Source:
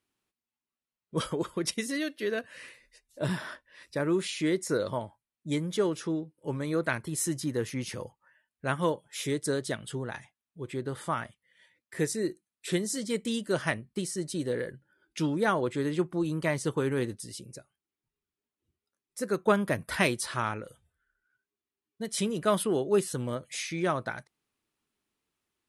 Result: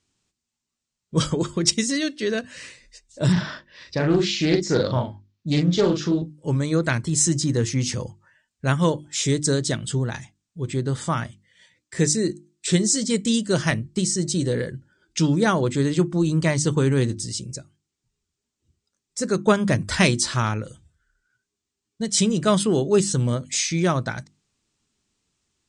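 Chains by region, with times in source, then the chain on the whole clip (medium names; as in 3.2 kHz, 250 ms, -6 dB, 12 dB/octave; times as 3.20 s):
3.32–6.22 s: low-pass 5.2 kHz 24 dB/octave + doubling 40 ms -3.5 dB + loudspeaker Doppler distortion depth 0.23 ms
whole clip: steep low-pass 8.1 kHz 48 dB/octave; tone controls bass +11 dB, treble +13 dB; hum notches 50/100/150/200/250/300/350 Hz; trim +4.5 dB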